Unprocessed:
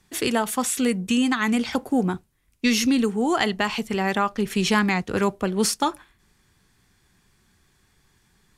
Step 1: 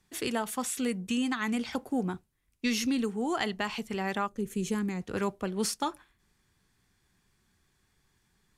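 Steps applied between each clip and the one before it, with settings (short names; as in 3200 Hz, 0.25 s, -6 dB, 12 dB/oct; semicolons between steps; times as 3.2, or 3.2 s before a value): spectral gain 4.27–5.01, 580–6000 Hz -11 dB; gain -8.5 dB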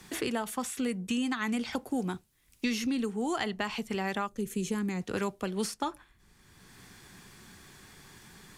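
three-band squash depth 70%; gain -1 dB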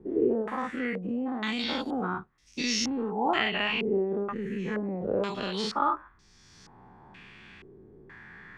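spectral dilation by 0.12 s; stepped low-pass 2.1 Hz 410–5600 Hz; gain -4.5 dB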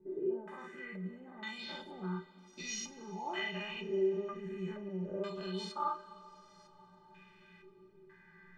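metallic resonator 180 Hz, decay 0.21 s, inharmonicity 0.03; two-slope reverb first 0.23 s, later 4.8 s, from -21 dB, DRR 7 dB; gain -1.5 dB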